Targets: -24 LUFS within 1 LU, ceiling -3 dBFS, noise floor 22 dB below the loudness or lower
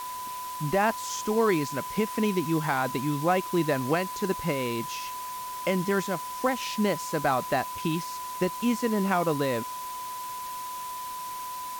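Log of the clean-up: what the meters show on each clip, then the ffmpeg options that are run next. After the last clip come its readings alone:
steady tone 1 kHz; tone level -34 dBFS; noise floor -36 dBFS; noise floor target -51 dBFS; loudness -28.5 LUFS; peak level -12.5 dBFS; loudness target -24.0 LUFS
-> -af "bandreject=f=1000:w=30"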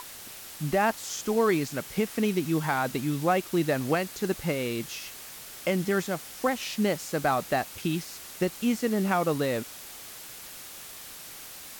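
steady tone not found; noise floor -44 dBFS; noise floor target -50 dBFS
-> -af "afftdn=nr=6:nf=-44"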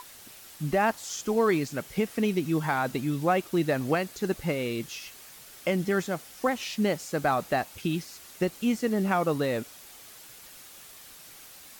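noise floor -49 dBFS; noise floor target -51 dBFS
-> -af "afftdn=nr=6:nf=-49"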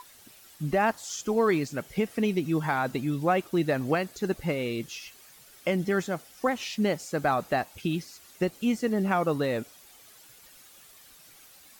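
noise floor -54 dBFS; loudness -28.5 LUFS; peak level -13.5 dBFS; loudness target -24.0 LUFS
-> -af "volume=1.68"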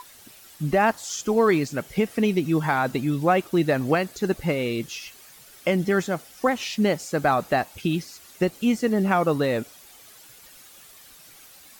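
loudness -24.0 LUFS; peak level -9.0 dBFS; noise floor -49 dBFS

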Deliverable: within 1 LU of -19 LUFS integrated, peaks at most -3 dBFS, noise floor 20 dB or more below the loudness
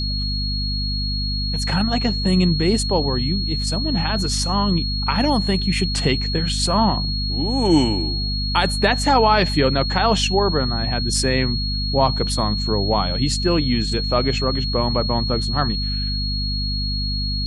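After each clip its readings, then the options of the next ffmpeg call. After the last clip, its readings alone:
hum 50 Hz; highest harmonic 250 Hz; hum level -22 dBFS; steady tone 4.3 kHz; tone level -25 dBFS; loudness -20.0 LUFS; peak level -3.0 dBFS; loudness target -19.0 LUFS
-> -af "bandreject=f=50:t=h:w=6,bandreject=f=100:t=h:w=6,bandreject=f=150:t=h:w=6,bandreject=f=200:t=h:w=6,bandreject=f=250:t=h:w=6"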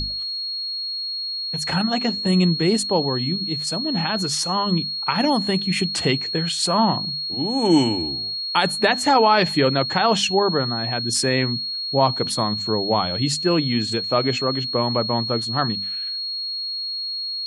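hum not found; steady tone 4.3 kHz; tone level -25 dBFS
-> -af "bandreject=f=4300:w=30"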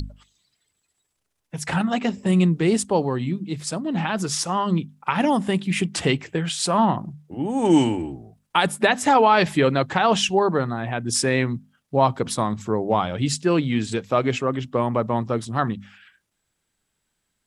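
steady tone not found; loudness -22.0 LUFS; peak level -4.0 dBFS; loudness target -19.0 LUFS
-> -af "volume=1.41,alimiter=limit=0.708:level=0:latency=1"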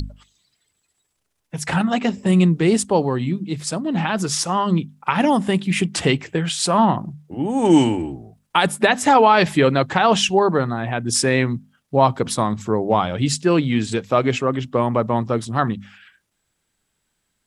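loudness -19.0 LUFS; peak level -3.0 dBFS; noise floor -73 dBFS

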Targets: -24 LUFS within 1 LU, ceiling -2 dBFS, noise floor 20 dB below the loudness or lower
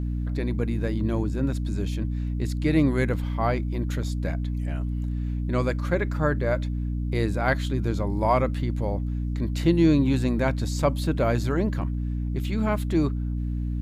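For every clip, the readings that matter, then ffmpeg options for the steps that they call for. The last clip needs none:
hum 60 Hz; highest harmonic 300 Hz; hum level -25 dBFS; loudness -26.0 LUFS; peak level -8.0 dBFS; loudness target -24.0 LUFS
-> -af "bandreject=f=60:t=h:w=4,bandreject=f=120:t=h:w=4,bandreject=f=180:t=h:w=4,bandreject=f=240:t=h:w=4,bandreject=f=300:t=h:w=4"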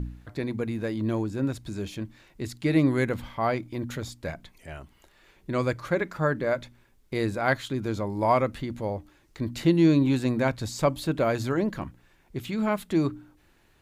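hum not found; loudness -27.5 LUFS; peak level -9.5 dBFS; loudness target -24.0 LUFS
-> -af "volume=1.5"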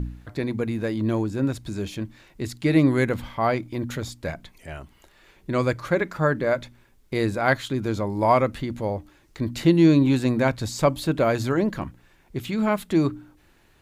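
loudness -24.0 LUFS; peak level -6.0 dBFS; noise floor -58 dBFS

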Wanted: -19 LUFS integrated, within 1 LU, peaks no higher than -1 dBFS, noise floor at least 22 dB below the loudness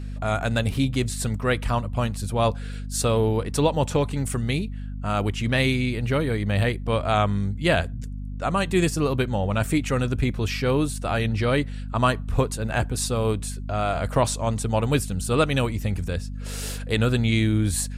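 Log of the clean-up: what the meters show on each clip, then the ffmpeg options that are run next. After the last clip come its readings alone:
hum 50 Hz; highest harmonic 250 Hz; hum level -30 dBFS; loudness -24.5 LUFS; peak level -6.5 dBFS; loudness target -19.0 LUFS
-> -af "bandreject=f=50:t=h:w=6,bandreject=f=100:t=h:w=6,bandreject=f=150:t=h:w=6,bandreject=f=200:t=h:w=6,bandreject=f=250:t=h:w=6"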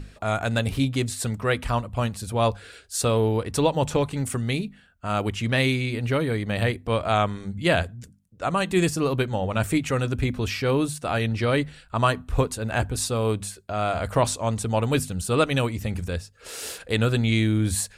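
hum not found; loudness -25.0 LUFS; peak level -7.5 dBFS; loudness target -19.0 LUFS
-> -af "volume=2"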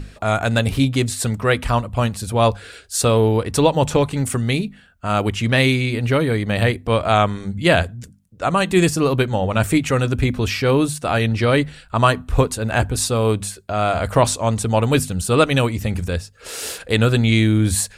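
loudness -19.0 LUFS; peak level -1.5 dBFS; noise floor -46 dBFS

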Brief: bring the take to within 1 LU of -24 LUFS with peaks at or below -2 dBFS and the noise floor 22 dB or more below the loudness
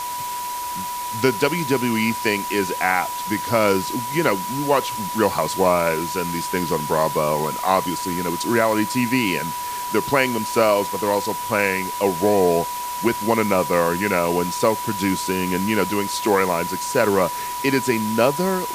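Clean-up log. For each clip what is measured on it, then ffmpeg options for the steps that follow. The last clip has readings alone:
steady tone 980 Hz; tone level -26 dBFS; noise floor -28 dBFS; noise floor target -43 dBFS; loudness -21.0 LUFS; peak level -3.0 dBFS; loudness target -24.0 LUFS
-> -af "bandreject=f=980:w=30"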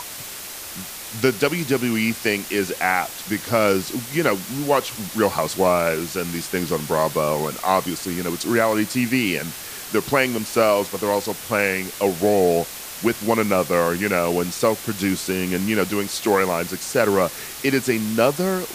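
steady tone not found; noise floor -35 dBFS; noise floor target -44 dBFS
-> -af "afftdn=nr=9:nf=-35"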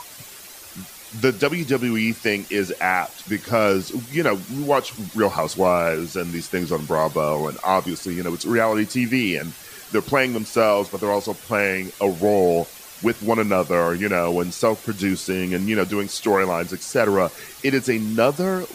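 noise floor -41 dBFS; noise floor target -44 dBFS
-> -af "afftdn=nr=6:nf=-41"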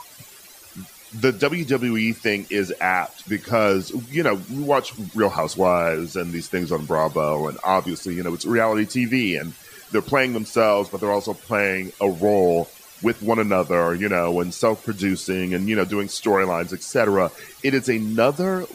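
noise floor -45 dBFS; loudness -22.0 LUFS; peak level -3.5 dBFS; loudness target -24.0 LUFS
-> -af "volume=0.794"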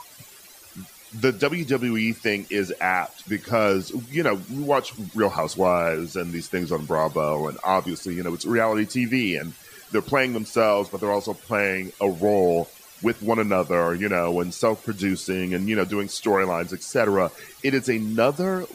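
loudness -24.0 LUFS; peak level -5.5 dBFS; noise floor -47 dBFS

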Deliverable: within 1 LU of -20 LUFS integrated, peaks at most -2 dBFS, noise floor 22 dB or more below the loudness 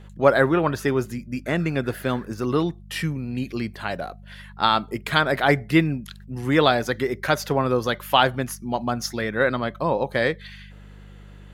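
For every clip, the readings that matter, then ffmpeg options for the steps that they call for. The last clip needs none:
hum 50 Hz; highest harmonic 200 Hz; hum level -42 dBFS; loudness -23.0 LUFS; peak level -2.0 dBFS; loudness target -20.0 LUFS
-> -af "bandreject=f=50:t=h:w=4,bandreject=f=100:t=h:w=4,bandreject=f=150:t=h:w=4,bandreject=f=200:t=h:w=4"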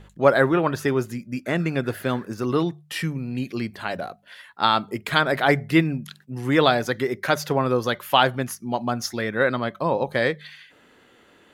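hum not found; loudness -23.0 LUFS; peak level -2.0 dBFS; loudness target -20.0 LUFS
-> -af "volume=1.41,alimiter=limit=0.794:level=0:latency=1"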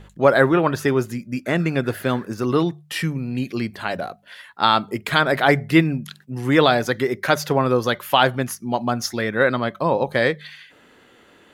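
loudness -20.5 LUFS; peak level -2.0 dBFS; noise floor -53 dBFS

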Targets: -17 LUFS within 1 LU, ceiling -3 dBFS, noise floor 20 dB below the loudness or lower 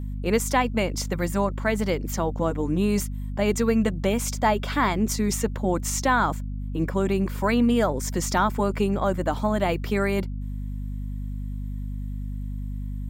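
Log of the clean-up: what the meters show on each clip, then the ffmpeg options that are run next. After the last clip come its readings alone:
hum 50 Hz; highest harmonic 250 Hz; hum level -28 dBFS; loudness -25.5 LUFS; peak level -8.5 dBFS; loudness target -17.0 LUFS
-> -af "bandreject=f=50:t=h:w=6,bandreject=f=100:t=h:w=6,bandreject=f=150:t=h:w=6,bandreject=f=200:t=h:w=6,bandreject=f=250:t=h:w=6"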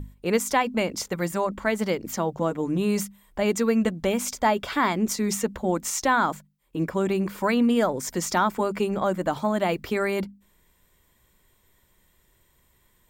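hum not found; loudness -25.0 LUFS; peak level -10.0 dBFS; loudness target -17.0 LUFS
-> -af "volume=2.51,alimiter=limit=0.708:level=0:latency=1"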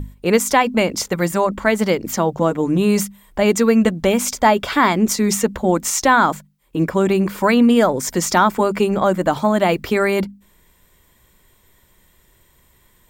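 loudness -17.5 LUFS; peak level -3.0 dBFS; noise floor -57 dBFS

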